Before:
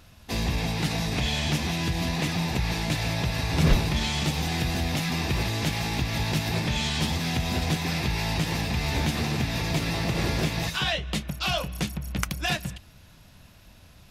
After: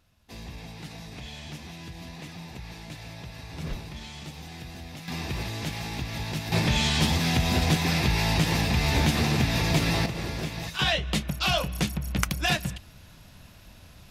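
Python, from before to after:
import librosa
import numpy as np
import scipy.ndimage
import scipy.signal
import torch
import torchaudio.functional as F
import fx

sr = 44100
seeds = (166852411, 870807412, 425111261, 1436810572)

y = fx.gain(x, sr, db=fx.steps((0.0, -14.0), (5.08, -5.5), (6.52, 3.0), (10.06, -6.0), (10.79, 2.0)))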